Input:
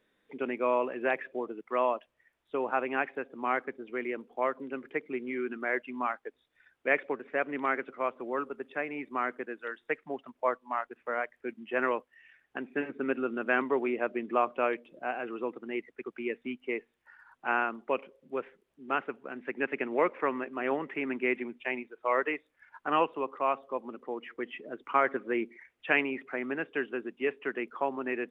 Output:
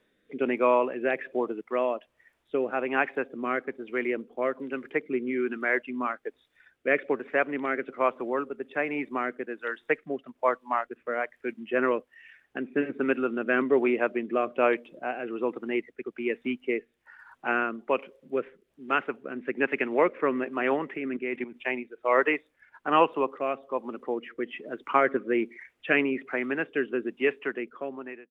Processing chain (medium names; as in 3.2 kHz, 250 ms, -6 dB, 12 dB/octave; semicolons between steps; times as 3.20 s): fade out at the end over 0.97 s; 20.97–21.56 s: level held to a coarse grid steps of 12 dB; rotary cabinet horn 1.2 Hz; trim +7 dB